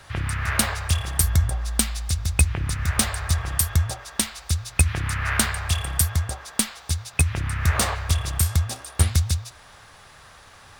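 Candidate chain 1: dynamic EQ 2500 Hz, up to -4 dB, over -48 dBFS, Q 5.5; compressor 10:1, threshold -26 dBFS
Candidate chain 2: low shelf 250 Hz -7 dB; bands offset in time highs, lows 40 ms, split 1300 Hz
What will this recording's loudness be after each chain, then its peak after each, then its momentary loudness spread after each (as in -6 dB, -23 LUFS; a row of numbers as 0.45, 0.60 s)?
-31.5, -26.0 LUFS; -8.0, -4.5 dBFS; 6, 6 LU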